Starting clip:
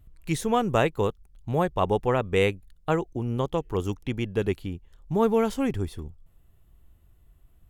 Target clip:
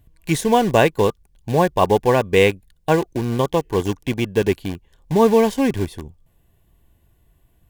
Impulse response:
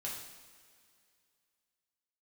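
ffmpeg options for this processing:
-filter_complex "[0:a]lowshelf=f=73:g=-10.5,asplit=2[s0][s1];[s1]acrusher=bits=4:mix=0:aa=0.000001,volume=0.398[s2];[s0][s2]amix=inputs=2:normalize=0,asuperstop=centerf=1300:order=12:qfactor=6,volume=1.88"

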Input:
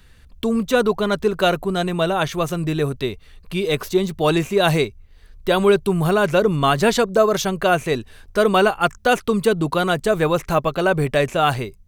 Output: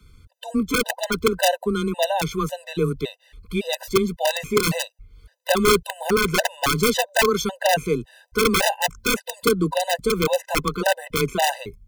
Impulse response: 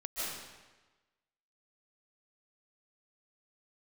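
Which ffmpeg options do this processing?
-af "afreqshift=15,aeval=exprs='(mod(2.66*val(0)+1,2)-1)/2.66':c=same,afftfilt=real='re*gt(sin(2*PI*1.8*pts/sr)*(1-2*mod(floor(b*sr/1024/510),2)),0)':imag='im*gt(sin(2*PI*1.8*pts/sr)*(1-2*mod(floor(b*sr/1024/510),2)),0)':win_size=1024:overlap=0.75"

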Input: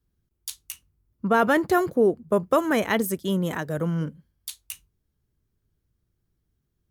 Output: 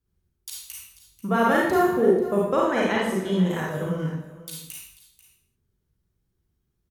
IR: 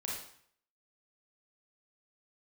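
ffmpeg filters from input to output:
-filter_complex "[0:a]asettb=1/sr,asplit=3[s0][s1][s2];[s0]atrim=end=2.454[s3];[s1]atrim=start=2.45:end=3.5,asetpts=PTS-STARTPTS,afade=t=in:d=0.004:c=qsin,afade=t=out:st=1.046:d=0.004:c=qsin,lowpass=6400[s4];[s2]atrim=start=3.496[s5];[s3][s4]acrossfade=d=0.004:c1=hsin:c2=qsin[s6];[s6][s5]acrossfade=d=0.004:c1=qsin:c2=hsin,aecho=1:1:489:0.141[s7];[1:a]atrim=start_sample=2205,afade=t=out:st=0.36:d=0.01,atrim=end_sample=16317,asetrate=39249,aresample=44100[s8];[s7][s8]afir=irnorm=-1:irlink=0,volume=0.841"

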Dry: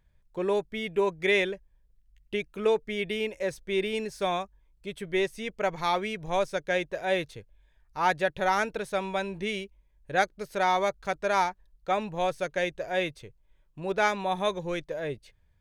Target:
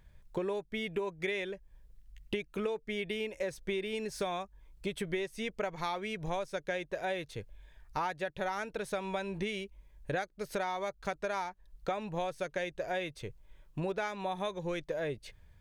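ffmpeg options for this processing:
-af "acompressor=threshold=0.0112:ratio=16,volume=2.37"

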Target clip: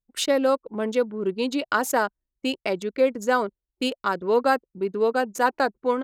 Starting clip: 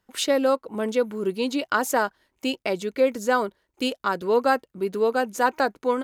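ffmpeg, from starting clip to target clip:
-af "anlmdn=3.98"

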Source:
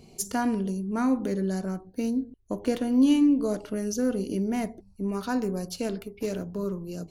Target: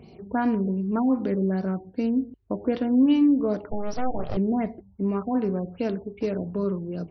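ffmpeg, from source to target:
-filter_complex "[0:a]highpass=f=48:w=0.5412,highpass=f=48:w=1.3066,aemphasis=mode=reproduction:type=50kf,asplit=2[s0][s1];[s1]alimiter=limit=0.0891:level=0:latency=1:release=315,volume=1.19[s2];[s0][s2]amix=inputs=2:normalize=0,asettb=1/sr,asplit=3[s3][s4][s5];[s3]atrim=end=3.714[s6];[s4]atrim=start=3.71:end=4.37,asetpts=PTS-STARTPTS,afade=t=in:d=0.004:c=qsin,afade=t=out:st=0.656:d=0.004:c=qsin,aeval=exprs='abs(val(0))':c=same[s7];[s5]atrim=start=4.366[s8];[s6][s7]acrossfade=d=0.004:c1=hsin:c2=qsin[s9];[s9][s8]acrossfade=d=0.004:c1=qsin:c2=hsin,afftfilt=real='re*lt(b*sr/1024,880*pow(6000/880,0.5+0.5*sin(2*PI*2.6*pts/sr)))':imag='im*lt(b*sr/1024,880*pow(6000/880,0.5+0.5*sin(2*PI*2.6*pts/sr)))':win_size=1024:overlap=0.75,volume=0.75"

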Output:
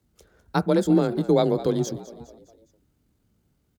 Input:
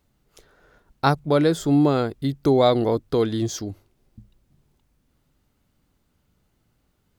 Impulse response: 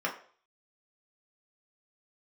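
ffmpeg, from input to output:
-filter_complex "[0:a]firequalizer=gain_entry='entry(280,0);entry(810,-6);entry(6700,-1)':delay=0.05:min_phase=1,atempo=1.9,asplit=5[s0][s1][s2][s3][s4];[s1]adelay=205,afreqshift=48,volume=0.158[s5];[s2]adelay=410,afreqshift=96,volume=0.0794[s6];[s3]adelay=615,afreqshift=144,volume=0.0398[s7];[s4]adelay=820,afreqshift=192,volume=0.0197[s8];[s0][s5][s6][s7][s8]amix=inputs=5:normalize=0,afreqshift=27,asplit=2[s9][s10];[1:a]atrim=start_sample=2205,asetrate=61740,aresample=44100,lowpass=2400[s11];[s10][s11]afir=irnorm=-1:irlink=0,volume=0.119[s12];[s9][s12]amix=inputs=2:normalize=0"

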